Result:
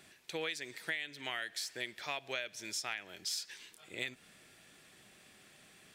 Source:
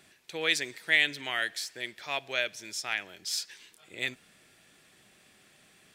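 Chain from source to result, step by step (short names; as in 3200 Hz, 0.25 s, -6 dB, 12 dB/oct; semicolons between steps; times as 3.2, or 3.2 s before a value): compressor 20:1, threshold -34 dBFS, peak gain reduction 17 dB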